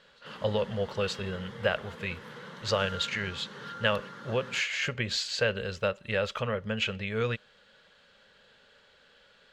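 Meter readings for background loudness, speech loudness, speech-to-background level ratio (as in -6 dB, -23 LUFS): -44.5 LUFS, -31.0 LUFS, 13.5 dB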